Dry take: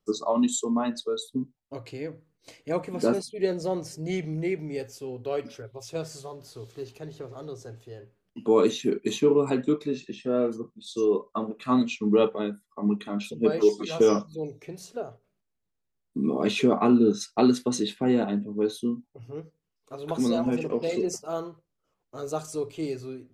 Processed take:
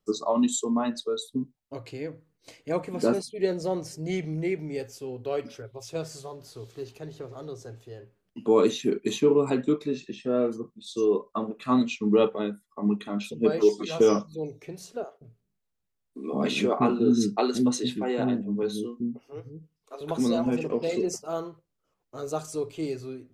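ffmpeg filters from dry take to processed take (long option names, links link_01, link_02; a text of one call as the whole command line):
ffmpeg -i in.wav -filter_complex "[0:a]asettb=1/sr,asplit=3[link_01][link_02][link_03];[link_01]atrim=end=15.044[link_04];[link_02]atrim=start=15.04:end=20.01,asetpts=PTS-STARTPTS,afade=type=in:duration=0.004:curve=qsin,afade=type=out:start_time=4.966:duration=0.004:curve=qsin,acrossover=split=320[link_05][link_06];[link_05]adelay=170[link_07];[link_07][link_06]amix=inputs=2:normalize=0,atrim=end_sample=219177[link_08];[link_03]atrim=start=20.006[link_09];[link_04][link_08]acrossfade=duration=0.004:curve1=hsin:curve2=qsin[link_10];[link_10][link_09]acrossfade=duration=0.004:curve1=qsin:curve2=hsin" out.wav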